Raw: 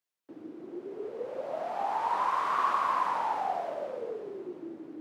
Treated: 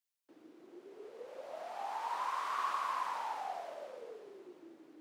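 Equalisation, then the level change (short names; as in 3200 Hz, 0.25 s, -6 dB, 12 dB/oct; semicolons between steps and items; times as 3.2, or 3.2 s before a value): pre-emphasis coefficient 0.8; low shelf 280 Hz -12 dB; high shelf 7500 Hz -9 dB; +5.0 dB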